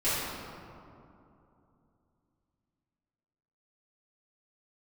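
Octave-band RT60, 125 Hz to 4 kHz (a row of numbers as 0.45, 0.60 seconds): 3.6, 3.5, 2.9, 2.7, 1.8, 1.2 seconds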